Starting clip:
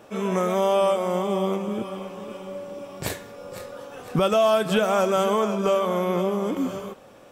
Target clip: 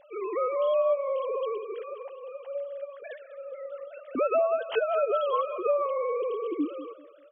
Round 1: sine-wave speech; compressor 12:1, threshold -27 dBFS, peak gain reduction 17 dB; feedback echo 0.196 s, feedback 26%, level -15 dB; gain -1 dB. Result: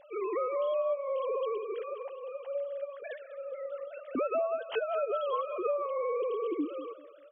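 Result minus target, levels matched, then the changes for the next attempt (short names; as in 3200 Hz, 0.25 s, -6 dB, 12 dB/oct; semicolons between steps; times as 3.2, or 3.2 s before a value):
compressor: peak gain reduction +6 dB
change: compressor 12:1, threshold -20.5 dBFS, peak gain reduction 11 dB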